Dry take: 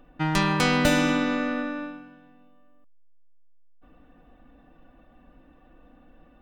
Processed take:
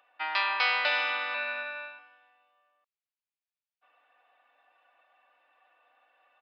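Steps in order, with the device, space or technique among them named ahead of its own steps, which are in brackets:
0:01.34–0:01.99: EQ curve with evenly spaced ripples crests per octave 1.5, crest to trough 14 dB
musical greeting card (downsampling to 11,025 Hz; high-pass filter 720 Hz 24 dB per octave; parametric band 2,400 Hz +6 dB 0.52 octaves)
level −3 dB

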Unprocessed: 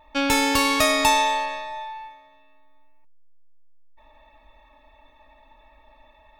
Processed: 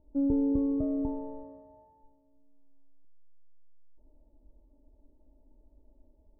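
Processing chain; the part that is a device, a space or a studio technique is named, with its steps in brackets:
under water (low-pass filter 410 Hz 24 dB per octave; parametric band 370 Hz +6 dB 0.49 octaves)
0:01.43–0:02.03: high-pass filter 50 Hz
level −2 dB

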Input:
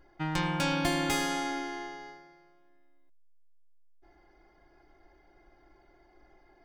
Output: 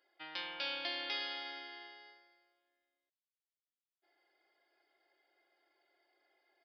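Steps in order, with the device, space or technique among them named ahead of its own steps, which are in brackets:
guitar amp tone stack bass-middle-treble 10-0-1
musical greeting card (downsampling to 11,025 Hz; high-pass filter 550 Hz 24 dB per octave; parametric band 3,200 Hz +4 dB 0.33 octaves)
level +17.5 dB

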